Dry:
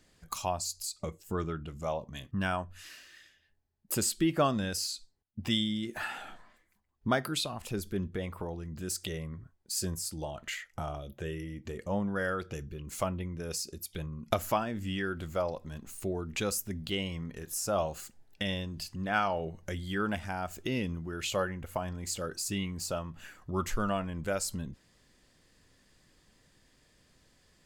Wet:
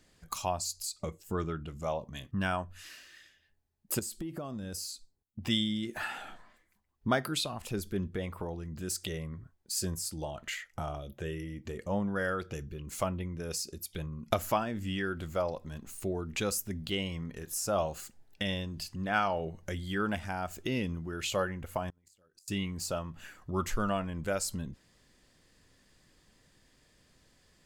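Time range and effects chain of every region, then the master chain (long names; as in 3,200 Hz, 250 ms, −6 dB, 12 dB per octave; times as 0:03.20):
0:03.99–0:05.42: parametric band 2,400 Hz −9 dB 2.7 octaves + downward compressor 10 to 1, threshold −34 dBFS
0:21.89–0:22.48: amplitude modulation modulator 100 Hz, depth 30% + gate with flip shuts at −31 dBFS, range −30 dB + parametric band 13,000 Hz +3.5 dB 1.3 octaves
whole clip: no processing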